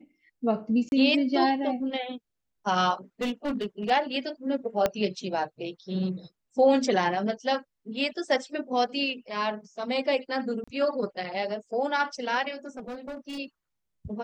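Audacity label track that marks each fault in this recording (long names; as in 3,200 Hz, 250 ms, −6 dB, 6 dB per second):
0.890000	0.920000	drop-out 31 ms
3.210000	3.910000	clipping −25 dBFS
4.860000	4.860000	click −10 dBFS
10.640000	10.680000	drop-out 35 ms
12.770000	13.390000	clipping −33.5 dBFS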